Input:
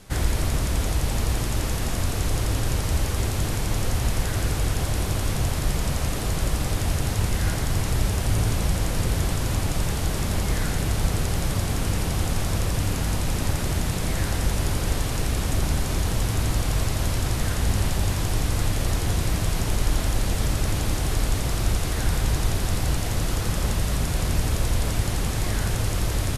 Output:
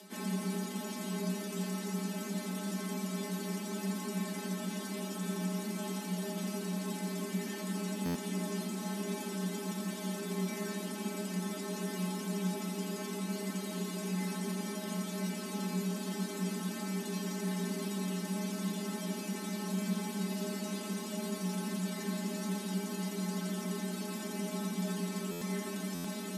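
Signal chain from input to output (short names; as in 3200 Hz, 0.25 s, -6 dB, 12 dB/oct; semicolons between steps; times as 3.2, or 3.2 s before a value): upward compressor, threshold -34 dBFS; metallic resonator 220 Hz, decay 0.26 s, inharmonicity 0.002; frequency shift +180 Hz; stuck buffer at 8.05/25.31/25.94, samples 512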